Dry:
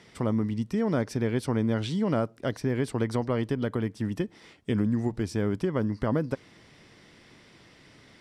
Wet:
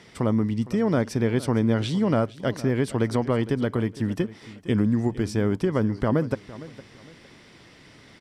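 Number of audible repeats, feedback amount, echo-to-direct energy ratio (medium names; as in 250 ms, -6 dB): 2, 27%, -17.0 dB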